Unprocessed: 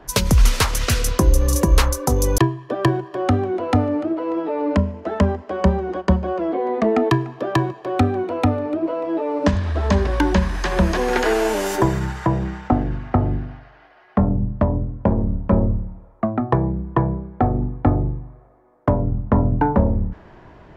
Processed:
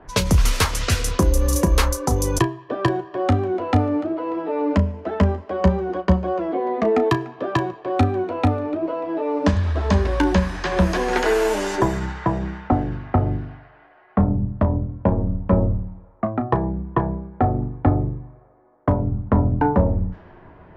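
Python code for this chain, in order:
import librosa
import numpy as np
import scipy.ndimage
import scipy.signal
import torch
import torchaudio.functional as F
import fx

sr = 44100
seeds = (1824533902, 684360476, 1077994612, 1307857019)

y = fx.room_early_taps(x, sr, ms=(11, 34), db=(-9.5, -13.0))
y = fx.env_lowpass(y, sr, base_hz=2100.0, full_db=-13.5)
y = y * 10.0 ** (-1.5 / 20.0)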